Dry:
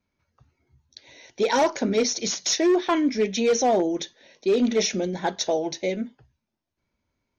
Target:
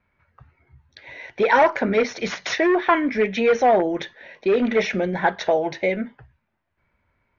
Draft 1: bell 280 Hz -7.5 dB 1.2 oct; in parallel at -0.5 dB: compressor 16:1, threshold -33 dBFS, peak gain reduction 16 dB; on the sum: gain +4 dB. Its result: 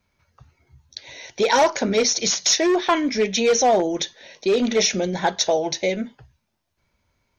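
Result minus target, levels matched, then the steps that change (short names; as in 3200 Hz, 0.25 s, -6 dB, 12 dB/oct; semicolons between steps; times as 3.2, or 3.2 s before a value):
2000 Hz band -4.0 dB
add first: synth low-pass 1900 Hz, resonance Q 1.7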